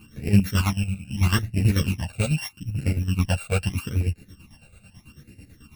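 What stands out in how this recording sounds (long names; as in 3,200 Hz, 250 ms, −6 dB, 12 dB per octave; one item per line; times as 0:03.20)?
a buzz of ramps at a fixed pitch in blocks of 16 samples
phaser sweep stages 12, 0.79 Hz, lowest notch 310–1,100 Hz
chopped level 9.1 Hz, depth 65%, duty 50%
a shimmering, thickened sound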